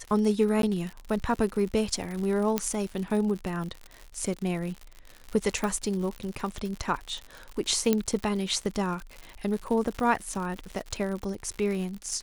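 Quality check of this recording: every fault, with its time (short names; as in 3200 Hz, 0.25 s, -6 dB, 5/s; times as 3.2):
crackle 100/s -33 dBFS
0.62–0.63 gap 12 ms
2.58 pop -9 dBFS
5.64 pop -16 dBFS
7.93 pop -10 dBFS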